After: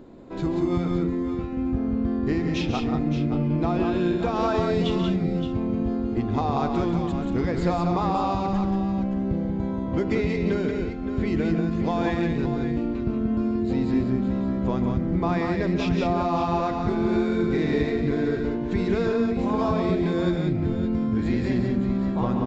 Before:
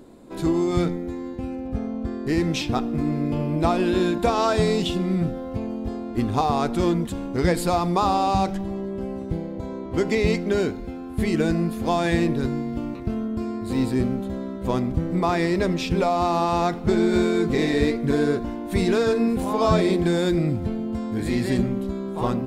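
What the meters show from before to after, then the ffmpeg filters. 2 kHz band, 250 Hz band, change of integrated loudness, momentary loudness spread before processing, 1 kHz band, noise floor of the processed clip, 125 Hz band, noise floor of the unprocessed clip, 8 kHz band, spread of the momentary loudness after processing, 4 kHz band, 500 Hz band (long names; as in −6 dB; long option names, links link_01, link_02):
−3.5 dB, 0.0 dB, −1.0 dB, 9 LU, −3.5 dB, −28 dBFS, 0.0 dB, −33 dBFS, below −10 dB, 3 LU, −6.0 dB, −2.5 dB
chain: -af "bass=frequency=250:gain=2,treble=frequency=4000:gain=-9,acompressor=threshold=-22dB:ratio=6,aecho=1:1:137|183|570:0.316|0.596|0.316,aresample=16000,aresample=44100"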